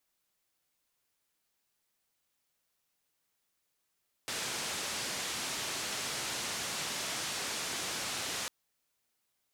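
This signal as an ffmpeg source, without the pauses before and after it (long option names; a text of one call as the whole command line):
ffmpeg -f lavfi -i "anoisesrc=color=white:duration=4.2:sample_rate=44100:seed=1,highpass=frequency=92,lowpass=frequency=7300,volume=-27.5dB" out.wav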